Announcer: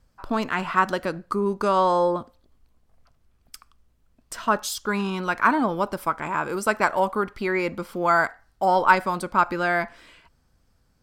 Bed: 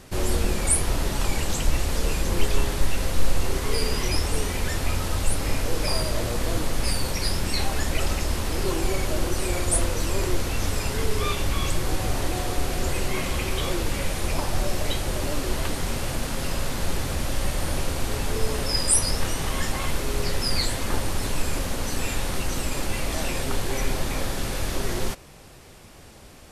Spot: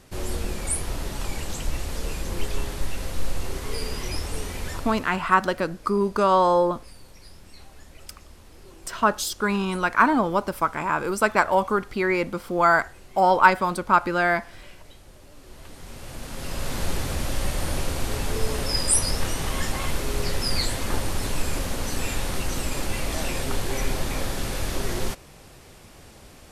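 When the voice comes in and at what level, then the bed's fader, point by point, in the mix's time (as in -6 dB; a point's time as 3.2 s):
4.55 s, +1.5 dB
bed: 4.7 s -5.5 dB
5.31 s -22.5 dB
15.31 s -22.5 dB
16.75 s -0.5 dB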